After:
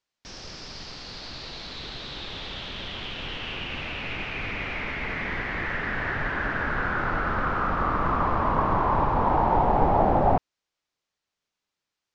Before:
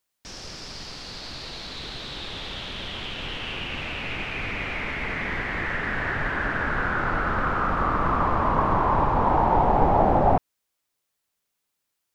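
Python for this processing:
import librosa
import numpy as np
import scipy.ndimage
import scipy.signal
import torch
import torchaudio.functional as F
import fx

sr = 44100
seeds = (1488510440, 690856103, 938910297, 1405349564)

y = scipy.signal.sosfilt(scipy.signal.butter(4, 6300.0, 'lowpass', fs=sr, output='sos'), x)
y = y * librosa.db_to_amplitude(-1.5)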